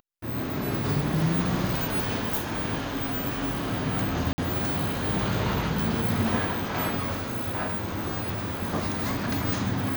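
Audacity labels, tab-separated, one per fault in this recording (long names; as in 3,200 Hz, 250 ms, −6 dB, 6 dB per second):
4.330000	4.380000	drop-out 50 ms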